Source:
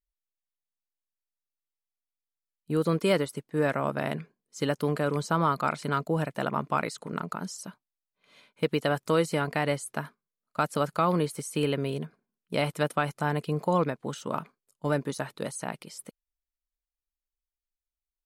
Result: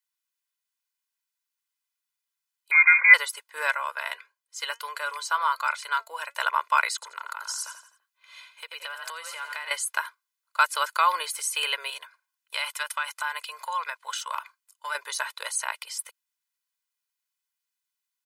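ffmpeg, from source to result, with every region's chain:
ffmpeg -i in.wav -filter_complex "[0:a]asettb=1/sr,asplit=3[link_01][link_02][link_03];[link_01]atrim=end=2.714[link_04];[link_02]atrim=start=2.71:end=3.14,asetpts=PTS-STARTPTS,afade=type=in:duration=0.004:curve=qsin,afade=type=out:start_time=0.426:duration=0.004:curve=qsin,aeval=exprs='val(0)+0.5*0.0355*sgn(val(0))':channel_layout=same,highpass=290,lowpass=frequency=2200:width_type=q:width=0.5098,lowpass=frequency=2200:width_type=q:width=0.6013,lowpass=frequency=2200:width_type=q:width=0.9,lowpass=frequency=2200:width_type=q:width=2.563,afreqshift=-2600[link_05];[link_03]atrim=start=3.136[link_06];[link_04][link_05]acrossfade=duration=0.004:curve1=hsin:curve2=qsin[link_07];[link_07][link_06]acrossfade=duration=0.004:curve1=qsin:curve2=hsin,asettb=1/sr,asplit=3[link_08][link_09][link_10];[link_08]atrim=end=3.714[link_11];[link_09]atrim=start=3.71:end=6.35,asetpts=PTS-STARTPTS,afade=type=in:duration=0.004:curve=qsin,afade=type=out:start_time=2.636:duration=0.004:curve=qsin,highpass=210,flanger=delay=3.3:depth=1.2:regen=82:speed=1.5:shape=triangular[link_12];[link_10]atrim=start=6.346[link_13];[link_11][link_12]acrossfade=duration=0.004:curve1=hsin:curve2=qsin[link_14];[link_14][link_13]acrossfade=duration=0.004:curve1=qsin:curve2=hsin,asettb=1/sr,asplit=3[link_15][link_16][link_17];[link_15]atrim=end=6.944[link_18];[link_16]atrim=start=6.94:end=9.71,asetpts=PTS-STARTPTS,afade=type=in:duration=0.004:curve=qsin,afade=type=out:start_time=2.766:duration=0.004:curve=qsin,asplit=5[link_19][link_20][link_21][link_22][link_23];[link_20]adelay=84,afreqshift=34,volume=-10.5dB[link_24];[link_21]adelay=168,afreqshift=68,volume=-18.5dB[link_25];[link_22]adelay=252,afreqshift=102,volume=-26.4dB[link_26];[link_23]adelay=336,afreqshift=136,volume=-34.4dB[link_27];[link_19][link_24][link_25][link_26][link_27]amix=inputs=5:normalize=0,atrim=end_sample=122157,acompressor=threshold=-35dB:ratio=6:attack=3.2:release=140:knee=1:detection=peak[link_28];[link_17]atrim=start=9.706[link_29];[link_18][link_28]acrossfade=duration=0.004:curve1=hsin:curve2=qsin[link_30];[link_30][link_29]acrossfade=duration=0.004:curve1=qsin:curve2=hsin,asettb=1/sr,asplit=3[link_31][link_32][link_33];[link_31]atrim=end=11.904[link_34];[link_32]atrim=start=11.9:end=14.95,asetpts=PTS-STARTPTS,afade=type=in:duration=0.004:curve=qsin,afade=type=out:start_time=3.046:duration=0.004:curve=qsin,equalizer=frequency=370:width_type=o:width=0.77:gain=-12.5,acompressor=threshold=-29dB:ratio=6:attack=3.2:release=140:knee=1:detection=peak[link_35];[link_33]atrim=start=14.946[link_36];[link_34][link_35]acrossfade=duration=0.004:curve1=hsin:curve2=qsin[link_37];[link_37][link_36]acrossfade=duration=0.004:curve1=qsin:curve2=hsin,highpass=frequency=1000:width=0.5412,highpass=frequency=1000:width=1.3066,aecho=1:1:2:0.7,volume=8dB" out.wav

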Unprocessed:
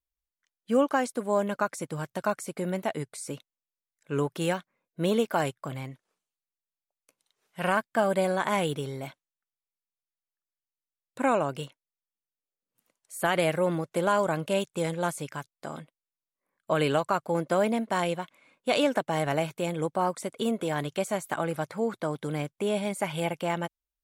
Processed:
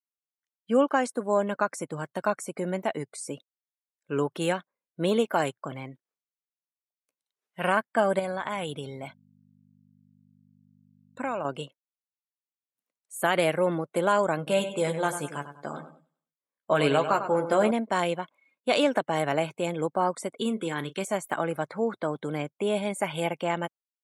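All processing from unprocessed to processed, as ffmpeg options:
ffmpeg -i in.wav -filter_complex "[0:a]asettb=1/sr,asplit=3[link_01][link_02][link_03];[link_01]atrim=end=8.194[link_04];[link_02]atrim=start=8.19:end=11.45,asetpts=PTS-STARTPTS,afade=type=in:duration=0.004:curve=qsin,afade=type=out:start_time=3.256:duration=0.004:curve=qsin,equalizer=frequency=370:width=1.4:gain=-5,acompressor=threshold=-30dB:ratio=2.5:attack=3.2:release=140:knee=1:detection=peak,aeval=exprs='val(0)+0.00355*(sin(2*PI*50*n/s)+sin(2*PI*2*50*n/s)/2+sin(2*PI*3*50*n/s)/3+sin(2*PI*4*50*n/s)/4+sin(2*PI*5*50*n/s)/5)':channel_layout=same[link_05];[link_03]atrim=start=11.446[link_06];[link_04][link_05]acrossfade=duration=0.004:curve1=hsin:curve2=qsin[link_07];[link_07][link_06]acrossfade=duration=0.004:curve1=qsin:curve2=hsin,asettb=1/sr,asplit=3[link_08][link_09][link_10];[link_08]atrim=end=14.374[link_11];[link_09]atrim=start=14.37:end=17.71,asetpts=PTS-STARTPTS,afade=type=in:duration=0.004:curve=qsin,afade=type=out:start_time=3.336:duration=0.004:curve=qsin,asplit=2[link_12][link_13];[link_13]adelay=14,volume=-7dB[link_14];[link_12][link_14]amix=inputs=2:normalize=0,atrim=end_sample=147294,aecho=1:1:98|196|294|392|490:0.316|0.142|0.064|0.0288|0.013,atrim=end_sample=147294[link_15];[link_10]atrim=start=17.706[link_16];[link_11][link_15]acrossfade=duration=0.004:curve1=hsin:curve2=qsin[link_17];[link_17][link_16]acrossfade=duration=0.004:curve1=qsin:curve2=hsin,asettb=1/sr,asplit=3[link_18][link_19][link_20];[link_18]atrim=end=20.364[link_21];[link_19]atrim=start=20.36:end=21.05,asetpts=PTS-STARTPTS,afade=type=in:duration=0.004:curve=qsin,afade=type=out:start_time=0.686:duration=0.004:curve=qsin,equalizer=frequency=660:width_type=o:width=0.45:gain=-14.5,asplit=2[link_22][link_23];[link_23]adelay=36,volume=-13.5dB[link_24];[link_22][link_24]amix=inputs=2:normalize=0,atrim=end_sample=30429[link_25];[link_20]atrim=start=21.046[link_26];[link_21][link_25]acrossfade=duration=0.004:curve1=hsin:curve2=qsin[link_27];[link_27][link_26]acrossfade=duration=0.004:curve1=qsin:curve2=hsin,highpass=170,afftdn=noise_reduction=18:noise_floor=-49,volume=1.5dB" out.wav

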